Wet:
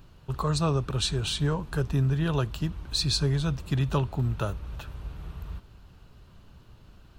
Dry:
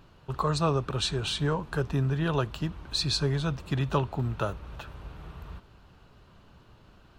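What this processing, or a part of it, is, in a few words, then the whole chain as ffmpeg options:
smiley-face EQ: -af "lowshelf=frequency=120:gain=7,equalizer=frequency=910:width_type=o:width=2.8:gain=-3,highshelf=frequency=7300:gain=7.5"

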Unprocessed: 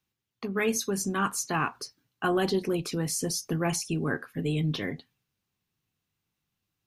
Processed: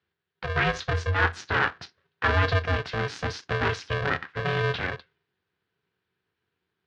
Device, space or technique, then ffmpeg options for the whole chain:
ring modulator pedal into a guitar cabinet: -af "aeval=exprs='val(0)*sgn(sin(2*PI*280*n/s))':channel_layout=same,highpass=82,equalizer=frequency=86:width_type=q:width=4:gain=9,equalizer=frequency=320:width_type=q:width=4:gain=4,equalizer=frequency=600:width_type=q:width=4:gain=-7,equalizer=frequency=1600:width_type=q:width=4:gain=9,lowpass=frequency=4100:width=0.5412,lowpass=frequency=4100:width=1.3066,volume=2dB"

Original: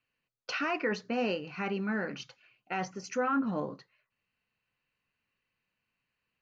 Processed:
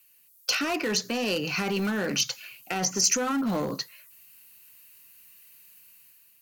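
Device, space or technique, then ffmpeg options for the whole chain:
FM broadcast chain: -filter_complex "[0:a]highpass=57,dynaudnorm=framelen=240:gausssize=5:maxgain=6.5dB,acrossover=split=280|700[link_01][link_02][link_03];[link_01]acompressor=threshold=-33dB:ratio=4[link_04];[link_02]acompressor=threshold=-31dB:ratio=4[link_05];[link_03]acompressor=threshold=-39dB:ratio=4[link_06];[link_04][link_05][link_06]amix=inputs=3:normalize=0,aemphasis=mode=production:type=75fm,alimiter=level_in=1.5dB:limit=-24dB:level=0:latency=1:release=15,volume=-1.5dB,asoftclip=type=hard:threshold=-29dB,lowpass=frequency=15000:width=0.5412,lowpass=frequency=15000:width=1.3066,aemphasis=mode=production:type=75fm,volume=6.5dB"

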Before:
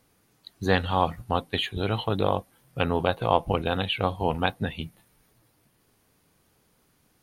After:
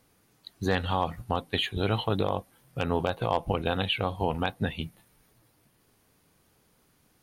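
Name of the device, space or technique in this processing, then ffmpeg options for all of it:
clipper into limiter: -af "asoftclip=type=hard:threshold=-8.5dB,alimiter=limit=-13.5dB:level=0:latency=1:release=137"

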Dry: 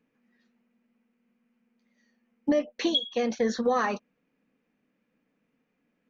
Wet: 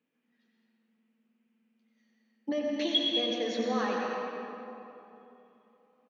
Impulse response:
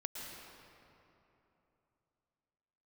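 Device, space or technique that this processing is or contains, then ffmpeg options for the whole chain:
PA in a hall: -filter_complex "[0:a]highpass=170,equalizer=frequency=3200:width_type=o:width=0.65:gain=7,aecho=1:1:91:0.376[link_01];[1:a]atrim=start_sample=2205[link_02];[link_01][link_02]afir=irnorm=-1:irlink=0,volume=-4.5dB"

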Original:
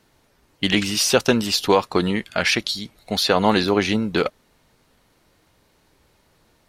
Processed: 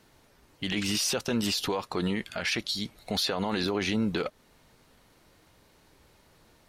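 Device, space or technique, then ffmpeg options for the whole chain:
stacked limiters: -af "alimiter=limit=-8dB:level=0:latency=1:release=384,alimiter=limit=-14.5dB:level=0:latency=1:release=145,alimiter=limit=-19dB:level=0:latency=1:release=20"

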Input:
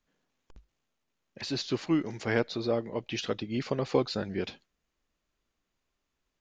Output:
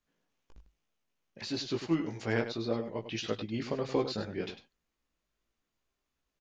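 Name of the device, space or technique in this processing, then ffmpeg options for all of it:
slapback doubling: -filter_complex "[0:a]asplit=3[link_01][link_02][link_03];[link_02]adelay=18,volume=-4dB[link_04];[link_03]adelay=100,volume=-10dB[link_05];[link_01][link_04][link_05]amix=inputs=3:normalize=0,volume=-4.5dB"

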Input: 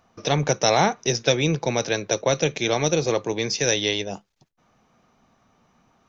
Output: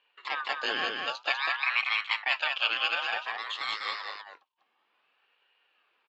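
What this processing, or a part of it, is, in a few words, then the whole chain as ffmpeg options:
voice changer toy: -filter_complex "[0:a]aeval=exprs='val(0)*sin(2*PI*1300*n/s+1300*0.3/0.55*sin(2*PI*0.55*n/s))':channel_layout=same,highpass=590,equalizer=frequency=650:width_type=q:width=4:gain=-6,equalizer=frequency=960:width_type=q:width=4:gain=-3,equalizer=frequency=1400:width_type=q:width=4:gain=-6,equalizer=frequency=2000:width_type=q:width=4:gain=-8,equalizer=frequency=2900:width_type=q:width=4:gain=7,lowpass=frequency=3800:width=0.5412,lowpass=frequency=3800:width=1.3066,asettb=1/sr,asplit=3[link_01][link_02][link_03];[link_01]atrim=end=1.304[link_04];[link_02]atrim=start=1.3:end=3.12,asetpts=PTS-STARTPTS,afade=type=in:duration=0.004:curve=qsin,afade=type=out:start_time=1.816:duration=0.004:curve=qsin,equalizer=frequency=160:width_type=o:width=0.67:gain=-11,equalizer=frequency=400:width_type=o:width=0.67:gain=-12,equalizer=frequency=2500:width_type=o:width=0.67:gain=11[link_05];[link_03]atrim=start=3.116[link_06];[link_04][link_05]acrossfade=duration=0.004:curve1=hsin:curve2=qsin[link_07];[link_07][link_06]acrossfade=duration=0.004:curve1=qsin:curve2=hsin,aecho=1:1:197:0.631,volume=-4.5dB"

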